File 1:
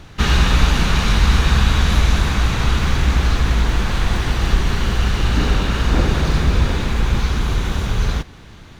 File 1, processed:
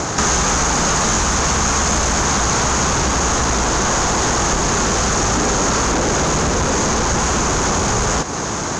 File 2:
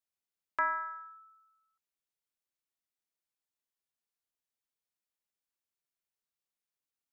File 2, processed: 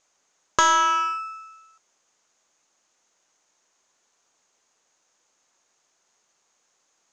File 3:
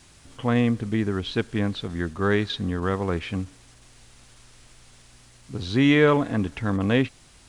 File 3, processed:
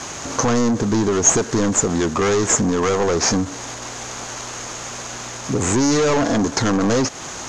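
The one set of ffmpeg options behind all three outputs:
-filter_complex "[0:a]acrossover=split=1500[a][b];[b]aeval=exprs='abs(val(0))':c=same[c];[a][c]amix=inputs=2:normalize=0,asplit=2[d][e];[e]highpass=f=720:p=1,volume=37dB,asoftclip=type=tanh:threshold=-1.5dB[f];[d][f]amix=inputs=2:normalize=0,lowpass=f=1.9k:p=1,volume=-6dB,acompressor=threshold=-19dB:ratio=3,lowpass=f=6.6k:t=q:w=8.6"

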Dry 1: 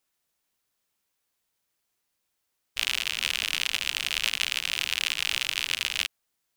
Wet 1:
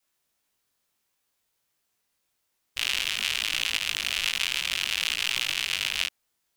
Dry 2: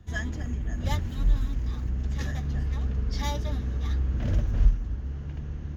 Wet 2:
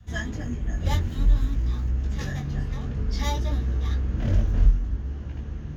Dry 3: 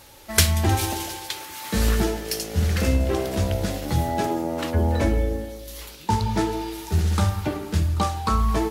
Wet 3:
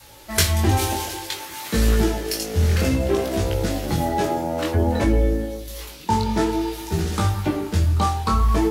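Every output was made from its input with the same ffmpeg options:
-filter_complex "[0:a]adynamicequalizer=threshold=0.0112:dfrequency=350:dqfactor=1.6:tfrequency=350:tqfactor=1.6:attack=5:release=100:ratio=0.375:range=1.5:mode=boostabove:tftype=bell,flanger=delay=17.5:depth=5.5:speed=0.56,asplit=2[a][b];[b]alimiter=limit=-17dB:level=0:latency=1:release=68,volume=-1.5dB[c];[a][c]amix=inputs=2:normalize=0"

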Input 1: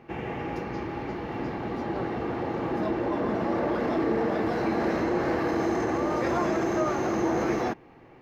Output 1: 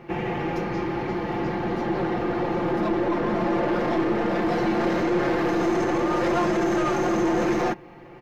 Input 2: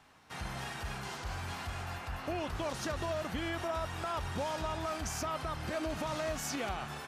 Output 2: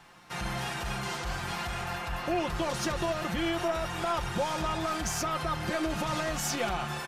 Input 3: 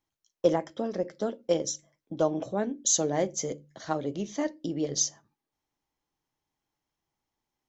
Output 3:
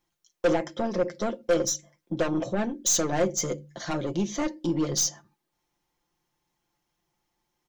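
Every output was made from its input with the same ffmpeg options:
-af "aeval=exprs='(tanh(22.4*val(0)+0.15)-tanh(0.15))/22.4':c=same,aecho=1:1:5.7:0.58,volume=6dB"

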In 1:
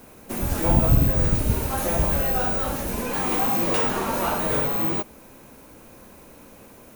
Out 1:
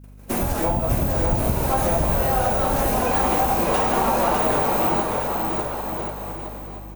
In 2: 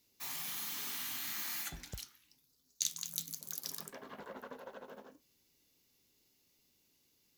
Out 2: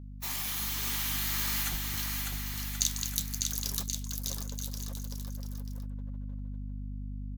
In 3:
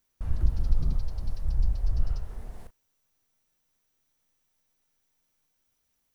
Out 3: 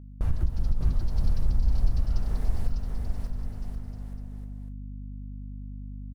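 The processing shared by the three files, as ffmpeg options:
-filter_complex "[0:a]agate=range=-27dB:threshold=-44dB:ratio=16:detection=peak,adynamicequalizer=threshold=0.00794:dfrequency=760:dqfactor=1.2:tfrequency=760:tqfactor=1.2:attack=5:release=100:ratio=0.375:range=4:mode=boostabove:tftype=bell,acompressor=threshold=-26dB:ratio=6,aeval=exprs='val(0)+0.00355*(sin(2*PI*50*n/s)+sin(2*PI*2*50*n/s)/2+sin(2*PI*3*50*n/s)/3+sin(2*PI*4*50*n/s)/4+sin(2*PI*5*50*n/s)/5)':c=same,asplit=2[a][b];[b]aecho=0:1:600|1080|1464|1771|2017:0.631|0.398|0.251|0.158|0.1[c];[a][c]amix=inputs=2:normalize=0,volume=6.5dB"

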